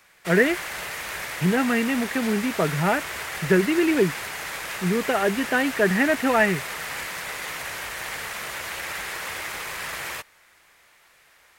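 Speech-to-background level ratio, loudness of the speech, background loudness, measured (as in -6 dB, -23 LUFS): 8.0 dB, -23.0 LUFS, -31.0 LUFS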